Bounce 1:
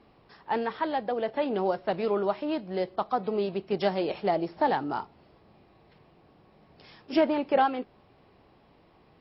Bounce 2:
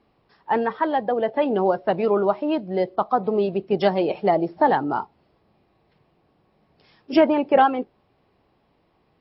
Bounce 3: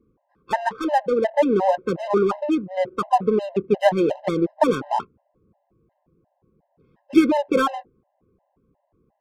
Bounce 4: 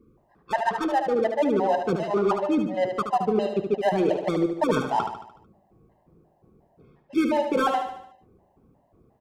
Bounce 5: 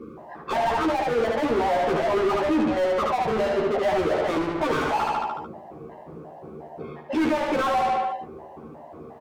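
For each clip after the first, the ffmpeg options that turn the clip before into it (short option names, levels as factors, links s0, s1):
-af "afftdn=nr=12:nf=-39,volume=2.24"
-af "adynamicsmooth=sensitivity=3.5:basefreq=750,afftfilt=real='re*gt(sin(2*PI*2.8*pts/sr)*(1-2*mod(floor(b*sr/1024/530),2)),0)':imag='im*gt(sin(2*PI*2.8*pts/sr)*(1-2*mod(floor(b*sr/1024/530),2)),0)':win_size=1024:overlap=0.75,volume=1.58"
-af "areverse,acompressor=threshold=0.0447:ratio=4,areverse,aecho=1:1:74|148|222|296|370|444:0.447|0.223|0.112|0.0558|0.0279|0.014,volume=1.78"
-filter_complex "[0:a]asplit=2[s0][s1];[s1]highpass=f=720:p=1,volume=100,asoftclip=type=tanh:threshold=0.335[s2];[s0][s2]amix=inputs=2:normalize=0,lowpass=f=1300:p=1,volume=0.501,asplit=2[s3][s4];[s4]adelay=13,volume=0.75[s5];[s3][s5]amix=inputs=2:normalize=0,volume=0.376"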